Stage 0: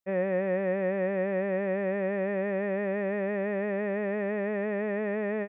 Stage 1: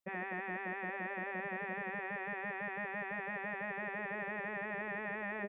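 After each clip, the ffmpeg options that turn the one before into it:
-af "afftfilt=real='re*lt(hypot(re,im),0.158)':imag='im*lt(hypot(re,im),0.158)':win_size=1024:overlap=0.75,volume=0.841"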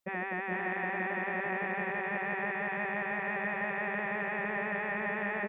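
-af "aecho=1:1:446:0.668,volume=1.78"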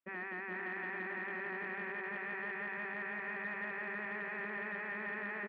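-filter_complex "[0:a]asplit=2[s0][s1];[s1]adelay=48,volume=0.224[s2];[s0][s2]amix=inputs=2:normalize=0,asoftclip=type=tanh:threshold=0.0473,highpass=240,equalizer=f=270:t=q:w=4:g=8,equalizer=f=540:t=q:w=4:g=-8,equalizer=f=780:t=q:w=4:g=-7,equalizer=f=1500:t=q:w=4:g=3,lowpass=f=2900:w=0.5412,lowpass=f=2900:w=1.3066,volume=0.562"

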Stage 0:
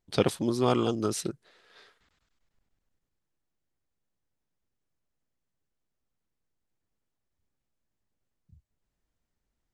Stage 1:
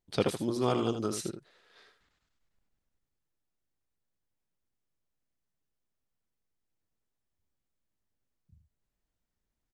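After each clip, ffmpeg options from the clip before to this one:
-af "aecho=1:1:79:0.376,volume=0.631"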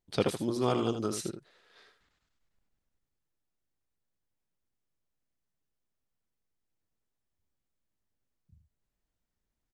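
-af anull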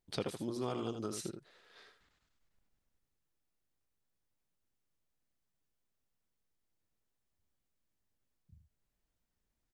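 -af "acompressor=threshold=0.00891:ratio=2"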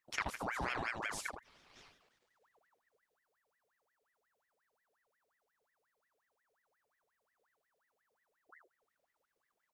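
-af "aeval=exprs='val(0)*sin(2*PI*1200*n/s+1200*0.65/5.6*sin(2*PI*5.6*n/s))':c=same,volume=1.26"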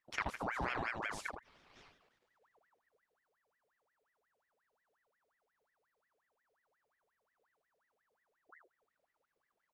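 -af "highshelf=f=4700:g=-10.5,volume=1.12"

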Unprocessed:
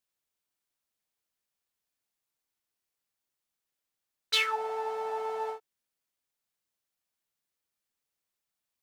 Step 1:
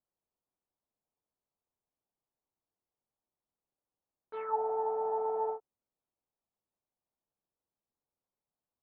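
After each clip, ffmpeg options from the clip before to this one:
-af "lowpass=f=1000:w=0.5412,lowpass=f=1000:w=1.3066,volume=1.26"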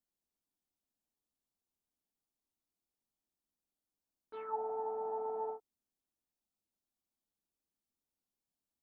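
-af "equalizer=f=125:t=o:w=1:g=-7,equalizer=f=250:t=o:w=1:g=4,equalizer=f=500:t=o:w=1:g=-8,equalizer=f=1000:t=o:w=1:g=-5,equalizer=f=2000:t=o:w=1:g=-8,volume=1.19"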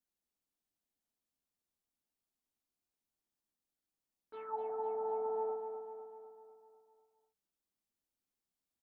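-af "aecho=1:1:250|500|750|1000|1250|1500|1750:0.422|0.236|0.132|0.0741|0.0415|0.0232|0.013,volume=0.794"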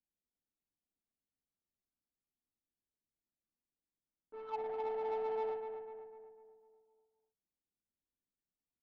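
-af "adynamicsmooth=sensitivity=6.5:basefreq=590"

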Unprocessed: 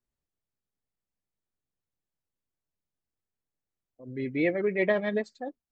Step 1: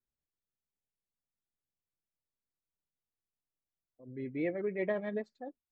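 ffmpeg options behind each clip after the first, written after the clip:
-af "lowpass=f=1500:p=1,volume=0.447"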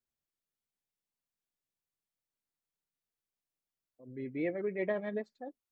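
-af "lowshelf=f=67:g=-8"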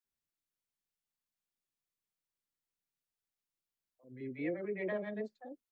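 -filter_complex "[0:a]acrossover=split=630[s0][s1];[s0]adelay=40[s2];[s2][s1]amix=inputs=2:normalize=0,volume=0.794"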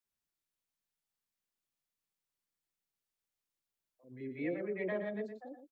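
-af "aecho=1:1:117:0.355"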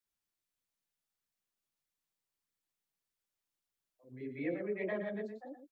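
-af "flanger=delay=0.5:depth=9.6:regen=-32:speed=1.6:shape=sinusoidal,volume=1.5"

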